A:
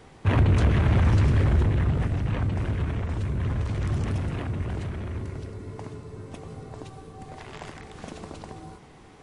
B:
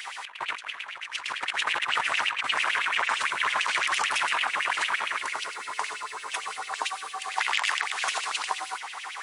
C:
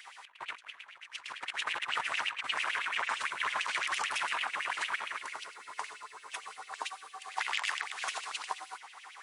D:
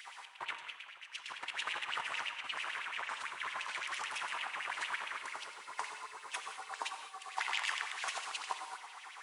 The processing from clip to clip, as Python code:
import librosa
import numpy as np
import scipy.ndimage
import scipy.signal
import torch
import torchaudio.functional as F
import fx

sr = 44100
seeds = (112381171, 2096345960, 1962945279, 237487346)

y1 = fx.tilt_eq(x, sr, slope=2.0)
y1 = fx.filter_lfo_highpass(y1, sr, shape='sine', hz=8.9, low_hz=910.0, high_hz=2900.0, q=4.4)
y1 = fx.over_compress(y1, sr, threshold_db=-36.0, ratio=-0.5)
y1 = y1 * librosa.db_to_amplitude(8.5)
y2 = fx.upward_expand(y1, sr, threshold_db=-44.0, expansion=1.5)
y2 = y2 * librosa.db_to_amplitude(-6.0)
y3 = fx.rider(y2, sr, range_db=5, speed_s=2.0)
y3 = fx.rev_gated(y3, sr, seeds[0], gate_ms=230, shape='flat', drr_db=8.0)
y3 = y3 * librosa.db_to_amplitude(-5.0)